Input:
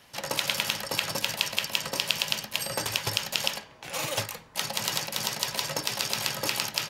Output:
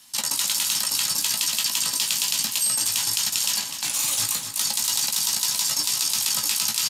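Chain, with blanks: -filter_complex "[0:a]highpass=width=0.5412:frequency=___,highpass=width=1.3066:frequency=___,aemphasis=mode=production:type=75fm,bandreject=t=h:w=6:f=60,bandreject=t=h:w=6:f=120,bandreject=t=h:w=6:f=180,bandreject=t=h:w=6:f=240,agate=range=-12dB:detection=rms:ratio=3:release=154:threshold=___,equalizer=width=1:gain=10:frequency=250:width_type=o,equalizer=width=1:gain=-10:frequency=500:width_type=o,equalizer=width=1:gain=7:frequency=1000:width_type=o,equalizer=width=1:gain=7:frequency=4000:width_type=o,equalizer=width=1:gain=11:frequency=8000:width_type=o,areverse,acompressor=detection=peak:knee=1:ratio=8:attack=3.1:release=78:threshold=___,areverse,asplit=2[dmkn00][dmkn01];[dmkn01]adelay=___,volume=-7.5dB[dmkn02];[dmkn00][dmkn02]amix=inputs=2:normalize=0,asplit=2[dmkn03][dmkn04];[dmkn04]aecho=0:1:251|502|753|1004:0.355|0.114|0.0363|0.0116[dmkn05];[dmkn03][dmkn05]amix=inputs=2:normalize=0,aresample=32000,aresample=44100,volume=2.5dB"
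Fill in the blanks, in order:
45, 45, -41dB, -24dB, 17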